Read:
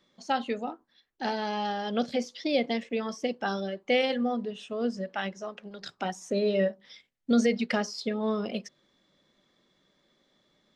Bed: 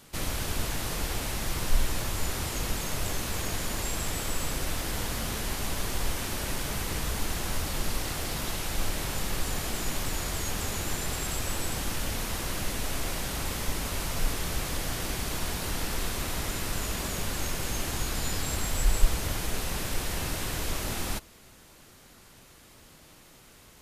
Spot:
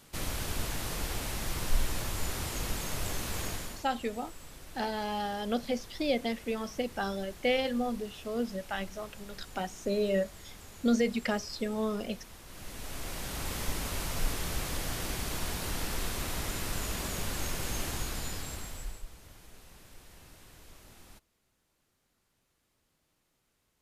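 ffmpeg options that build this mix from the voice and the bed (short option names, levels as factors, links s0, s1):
-filter_complex "[0:a]adelay=3550,volume=0.708[s0];[1:a]volume=3.76,afade=t=out:st=3.45:d=0.4:silence=0.188365,afade=t=in:st=12.46:d=1.14:silence=0.177828,afade=t=out:st=17.83:d=1.2:silence=0.105925[s1];[s0][s1]amix=inputs=2:normalize=0"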